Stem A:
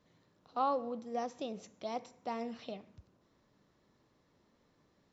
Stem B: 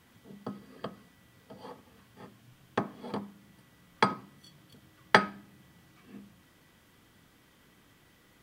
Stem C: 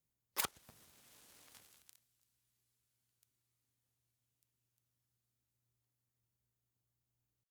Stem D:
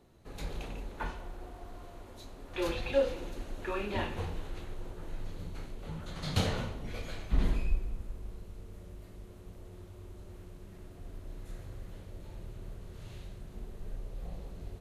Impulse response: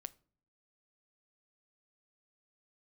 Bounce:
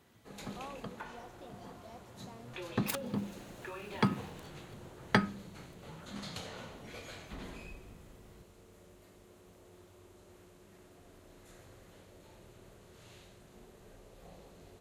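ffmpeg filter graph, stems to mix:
-filter_complex "[0:a]volume=-15dB[link_01];[1:a]asubboost=boost=7:cutoff=250,volume=-6.5dB[link_02];[2:a]acrusher=bits=4:mode=log:mix=0:aa=0.000001,adelay=2500,volume=-1dB[link_03];[3:a]highpass=frequency=360:poles=1,equalizer=frequency=7200:width=3.2:gain=4,acompressor=threshold=-40dB:ratio=6,volume=-1.5dB[link_04];[link_01][link_02][link_03][link_04]amix=inputs=4:normalize=0"

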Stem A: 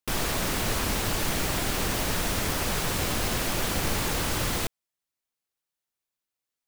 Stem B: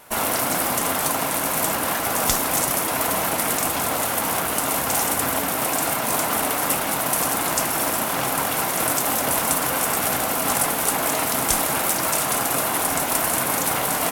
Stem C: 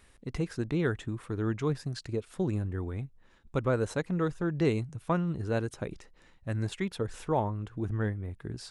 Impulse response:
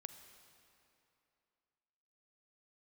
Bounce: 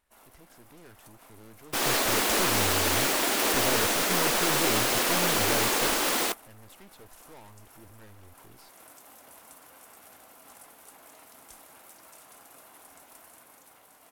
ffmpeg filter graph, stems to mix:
-filter_complex "[0:a]highpass=frequency=230:width=0.5412,highpass=frequency=230:width=1.3066,adelay=1650,volume=1dB[link_01];[1:a]volume=-15.5dB[link_02];[2:a]asoftclip=type=tanh:threshold=-31.5dB,aeval=exprs='0.0266*(cos(1*acos(clip(val(0)/0.0266,-1,1)))-cos(1*PI/2))+0.00596*(cos(6*acos(clip(val(0)/0.0266,-1,1)))-cos(6*PI/2))':channel_layout=same,volume=1dB,asplit=2[link_03][link_04];[link_04]apad=whole_len=622399[link_05];[link_02][link_05]sidechaincompress=threshold=-39dB:ratio=4:attack=32:release=126[link_06];[link_01][link_06][link_03]amix=inputs=3:normalize=0,agate=range=-18dB:threshold=-28dB:ratio=16:detection=peak,equalizer=frequency=140:width_type=o:width=1.2:gain=-7,dynaudnorm=framelen=100:gausssize=17:maxgain=3.5dB"

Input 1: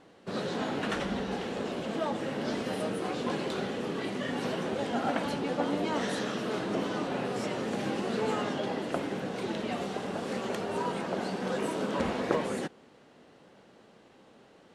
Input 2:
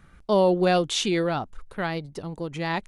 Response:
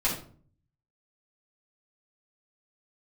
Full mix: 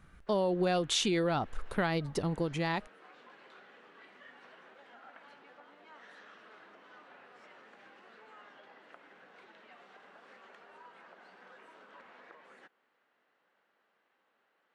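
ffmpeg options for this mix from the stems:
-filter_complex "[0:a]acompressor=threshold=-33dB:ratio=6,bandpass=frequency=1600:width_type=q:width=1.4:csg=0,volume=-10dB[link_01];[1:a]dynaudnorm=framelen=170:gausssize=7:maxgain=10.5dB,volume=-5.5dB[link_02];[link_01][link_02]amix=inputs=2:normalize=0,acompressor=threshold=-27dB:ratio=6"

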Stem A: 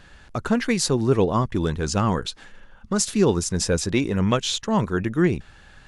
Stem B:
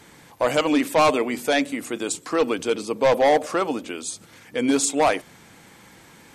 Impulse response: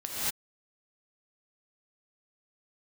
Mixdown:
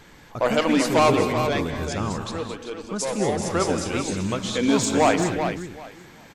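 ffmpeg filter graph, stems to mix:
-filter_complex "[0:a]volume=-8.5dB,asplit=3[link_01][link_02][link_03];[link_02]volume=-11dB[link_04];[link_03]volume=-8dB[link_05];[1:a]equalizer=frequency=9800:width=2.4:gain=-15,volume=9dB,afade=type=out:start_time=1.1:duration=0.64:silence=0.316228,afade=type=in:start_time=3.37:duration=0.29:silence=0.281838,asplit=3[link_06][link_07][link_08];[link_07]volume=-15dB[link_09];[link_08]volume=-6.5dB[link_10];[2:a]atrim=start_sample=2205[link_11];[link_04][link_09]amix=inputs=2:normalize=0[link_12];[link_12][link_11]afir=irnorm=-1:irlink=0[link_13];[link_05][link_10]amix=inputs=2:normalize=0,aecho=0:1:386|772|1158:1|0.2|0.04[link_14];[link_01][link_06][link_13][link_14]amix=inputs=4:normalize=0"

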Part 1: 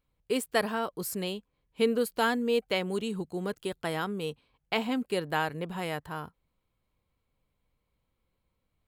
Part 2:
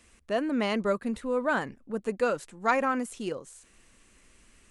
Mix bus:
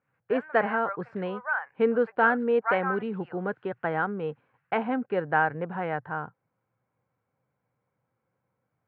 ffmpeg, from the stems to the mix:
ffmpeg -i stem1.wav -i stem2.wav -filter_complex "[0:a]volume=0.5dB[link_01];[1:a]agate=range=-33dB:threshold=-51dB:ratio=3:detection=peak,highpass=frequency=810:width=0.5412,highpass=frequency=810:width=1.3066,volume=-5.5dB[link_02];[link_01][link_02]amix=inputs=2:normalize=0,highpass=frequency=110:width=0.5412,highpass=frequency=110:width=1.3066,equalizer=frequency=120:width_type=q:width=4:gain=8,equalizer=frequency=520:width_type=q:width=4:gain=4,equalizer=frequency=790:width_type=q:width=4:gain=7,equalizer=frequency=1500:width_type=q:width=4:gain=9,lowpass=frequency=2100:width=0.5412,lowpass=frequency=2100:width=1.3066" out.wav

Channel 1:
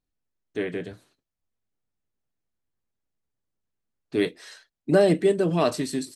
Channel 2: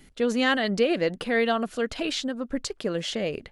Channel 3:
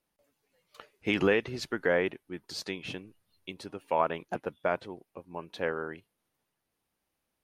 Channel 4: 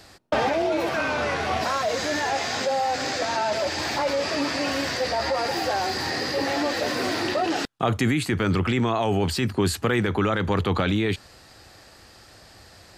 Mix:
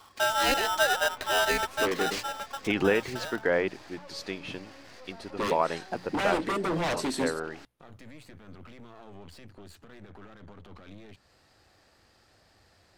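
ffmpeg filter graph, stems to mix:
ffmpeg -i stem1.wav -i stem2.wav -i stem3.wav -i stem4.wav -filter_complex "[0:a]highpass=210,acompressor=threshold=-20dB:ratio=3,aeval=exprs='0.0531*(abs(mod(val(0)/0.0531+3,4)-2)-1)':channel_layout=same,adelay=1250,volume=2.5dB[link_01];[1:a]acontrast=26,acrusher=bits=3:mode=log:mix=0:aa=0.000001,aeval=exprs='val(0)*sgn(sin(2*PI*1100*n/s))':channel_layout=same,volume=-6.5dB,afade=type=out:start_time=2.07:duration=0.5:silence=0.375837[link_02];[2:a]adelay=1600,volume=1dB[link_03];[3:a]acompressor=threshold=-32dB:ratio=2,alimiter=level_in=1dB:limit=-24dB:level=0:latency=1:release=36,volume=-1dB,aeval=exprs='clip(val(0),-1,0.00447)':channel_layout=same,volume=-11.5dB[link_04];[link_01][link_02][link_03][link_04]amix=inputs=4:normalize=0,highshelf=frequency=4800:gain=-5.5,bandreject=frequency=60:width_type=h:width=6,bandreject=frequency=120:width_type=h:width=6,bandreject=frequency=180:width_type=h:width=6" out.wav

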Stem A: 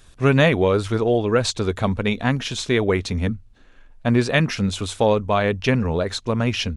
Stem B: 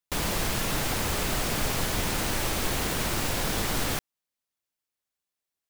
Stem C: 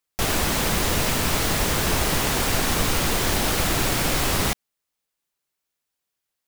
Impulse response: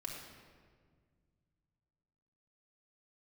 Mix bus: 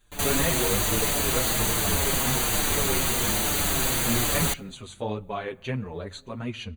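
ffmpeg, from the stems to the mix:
-filter_complex "[0:a]flanger=delay=4.6:depth=8.3:regen=-29:speed=1.7:shape=triangular,volume=-6.5dB,asplit=2[link_01][link_02];[link_02]volume=-19dB[link_03];[1:a]volume=-7.5dB[link_04];[2:a]bass=frequency=250:gain=-1,treble=frequency=4000:gain=6,volume=-2dB,asplit=2[link_05][link_06];[link_06]volume=-22dB[link_07];[3:a]atrim=start_sample=2205[link_08];[link_03][link_07]amix=inputs=2:normalize=0[link_09];[link_09][link_08]afir=irnorm=-1:irlink=0[link_10];[link_01][link_04][link_05][link_10]amix=inputs=4:normalize=0,asuperstop=centerf=5300:order=8:qfactor=4.7,asplit=2[link_11][link_12];[link_12]adelay=6.2,afreqshift=-1.2[link_13];[link_11][link_13]amix=inputs=2:normalize=1"

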